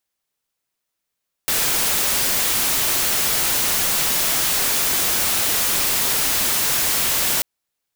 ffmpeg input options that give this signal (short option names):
-f lavfi -i "anoisesrc=c=white:a=0.183:d=5.94:r=44100:seed=1"